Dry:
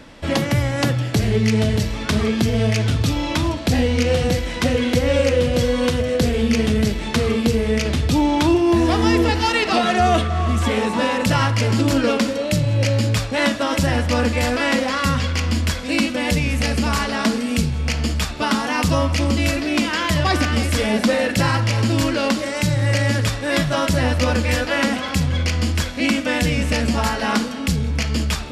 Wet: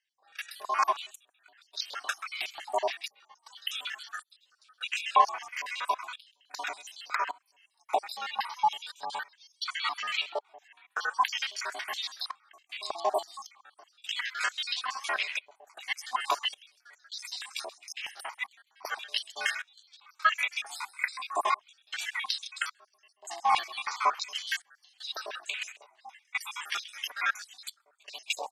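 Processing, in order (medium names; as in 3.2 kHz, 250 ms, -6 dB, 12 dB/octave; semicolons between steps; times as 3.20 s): random holes in the spectrogram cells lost 81%; frequency-shifting echo 131 ms, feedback 43%, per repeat +64 Hz, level -19 dB; trance gate "..xxxx...xxxxxxx" 78 bpm -24 dB; ring modulator 510 Hz; step-sequenced high-pass 3.1 Hz 840–3800 Hz; trim -3.5 dB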